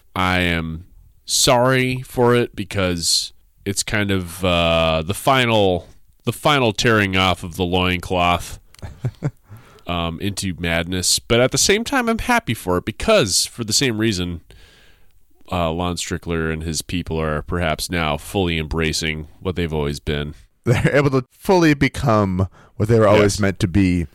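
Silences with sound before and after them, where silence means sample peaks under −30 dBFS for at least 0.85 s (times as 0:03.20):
0:14.51–0:15.48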